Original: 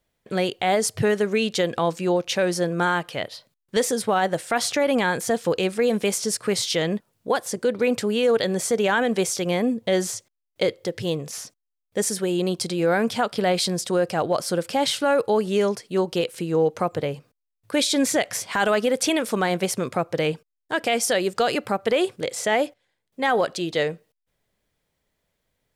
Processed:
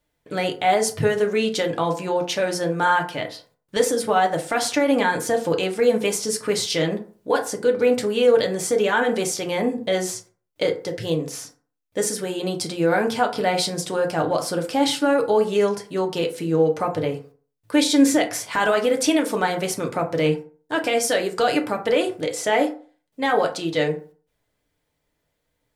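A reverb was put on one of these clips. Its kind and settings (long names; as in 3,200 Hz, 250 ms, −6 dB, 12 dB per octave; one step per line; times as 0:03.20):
feedback delay network reverb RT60 0.42 s, low-frequency decay 0.95×, high-frequency decay 0.5×, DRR 2 dB
level −1 dB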